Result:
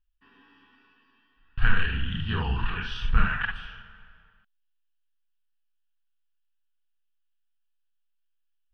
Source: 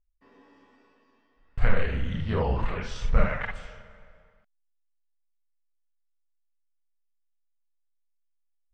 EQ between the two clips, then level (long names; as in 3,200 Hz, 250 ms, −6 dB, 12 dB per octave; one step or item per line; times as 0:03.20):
flat-topped bell 2,200 Hz +12 dB 1.3 octaves
phaser with its sweep stopped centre 2,100 Hz, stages 6
0.0 dB